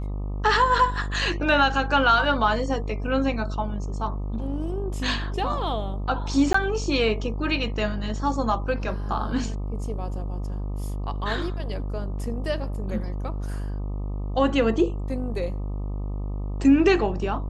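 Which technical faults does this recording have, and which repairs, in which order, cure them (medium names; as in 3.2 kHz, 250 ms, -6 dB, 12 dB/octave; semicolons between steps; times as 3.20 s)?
buzz 50 Hz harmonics 25 -29 dBFS
6.53–6.54 s: dropout 14 ms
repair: de-hum 50 Hz, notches 25; interpolate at 6.53 s, 14 ms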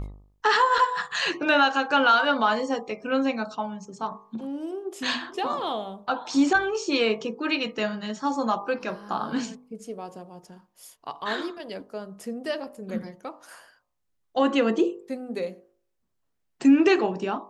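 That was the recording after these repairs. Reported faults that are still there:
nothing left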